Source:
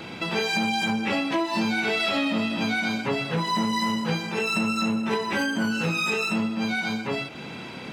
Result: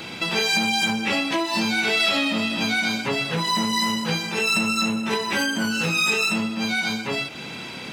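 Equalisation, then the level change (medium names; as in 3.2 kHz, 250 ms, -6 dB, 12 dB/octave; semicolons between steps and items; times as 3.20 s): treble shelf 2.6 kHz +10 dB; 0.0 dB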